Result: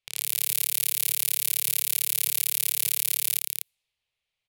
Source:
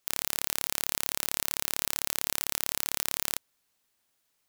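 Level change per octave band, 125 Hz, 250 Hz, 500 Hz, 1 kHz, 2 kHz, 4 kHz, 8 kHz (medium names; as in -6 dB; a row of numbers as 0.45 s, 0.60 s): no reading, under -10 dB, -8.5 dB, -10.5 dB, 0.0 dB, +3.0 dB, +6.0 dB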